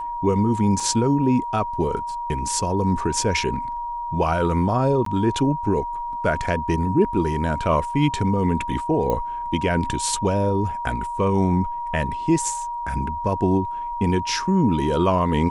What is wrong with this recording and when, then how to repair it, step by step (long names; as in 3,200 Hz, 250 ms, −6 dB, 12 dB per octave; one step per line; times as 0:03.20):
whistle 950 Hz −26 dBFS
0:00.80: drop-out 3.4 ms
0:05.05–0:05.06: drop-out 13 ms
0:09.10: click −12 dBFS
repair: click removal
notch filter 950 Hz, Q 30
repair the gap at 0:00.80, 3.4 ms
repair the gap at 0:05.05, 13 ms